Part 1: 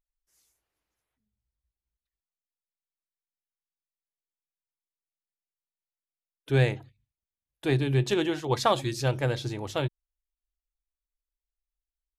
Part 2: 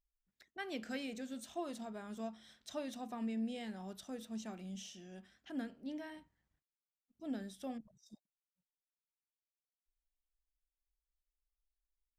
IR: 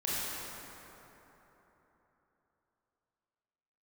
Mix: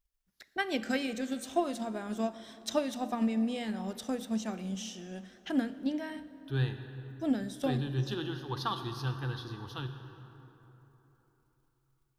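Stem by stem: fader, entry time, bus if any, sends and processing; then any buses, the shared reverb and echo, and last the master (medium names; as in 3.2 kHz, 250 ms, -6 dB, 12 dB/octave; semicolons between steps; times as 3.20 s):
-13.0 dB, 0.00 s, send -13 dB, static phaser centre 2.2 kHz, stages 6
+2.5 dB, 0.00 s, send -20.5 dB, transient shaper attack +6 dB, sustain 0 dB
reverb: on, RT60 3.7 s, pre-delay 22 ms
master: level rider gain up to 5 dB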